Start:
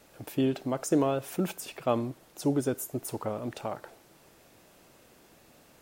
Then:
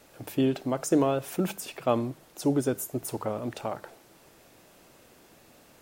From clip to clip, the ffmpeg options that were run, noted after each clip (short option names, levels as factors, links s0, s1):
-af "bandreject=f=50:t=h:w=6,bandreject=f=100:t=h:w=6,bandreject=f=150:t=h:w=6,bandreject=f=200:t=h:w=6,volume=1.26"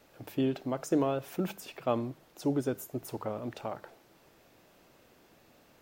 -af "equalizer=f=9400:t=o:w=1:g=-7.5,volume=0.596"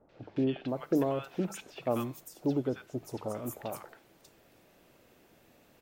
-filter_complex "[0:a]acrossover=split=1100|5000[s0][s1][s2];[s1]adelay=90[s3];[s2]adelay=680[s4];[s0][s3][s4]amix=inputs=3:normalize=0"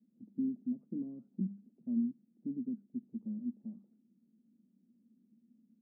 -af "asuperpass=centerf=220:order=4:qfactor=4.5,volume=2"